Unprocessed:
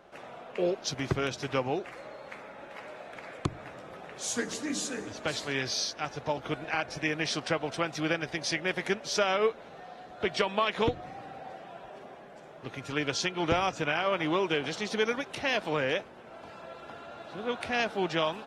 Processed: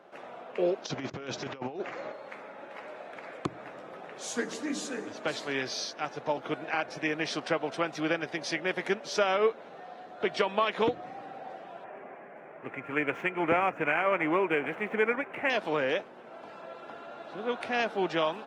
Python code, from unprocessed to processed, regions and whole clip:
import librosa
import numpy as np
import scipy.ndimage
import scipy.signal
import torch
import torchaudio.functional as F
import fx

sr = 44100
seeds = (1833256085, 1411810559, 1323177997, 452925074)

y = fx.chain(x, sr, fx.over_compress(threshold_db=-35.0, ratio=-0.5),
    fx.low_shelf(hz=150.0, db=4.5),
    fx.resample_bad(factor=3, down='none', up='filtered'), at=(0.85, 2.12))
y = fx.chain(y, sr, fx.median_filter(points=9),
    fx.high_shelf_res(hz=3000.0, db=-10.0, q=3.0), at=(11.84, 15.5))
y = scipy.signal.sosfilt(scipy.signal.butter(2, 210.0, 'highpass', fs=sr, output='sos'), y)
y = fx.high_shelf(y, sr, hz=3400.0, db=-8.5)
y = y * librosa.db_to_amplitude(1.5)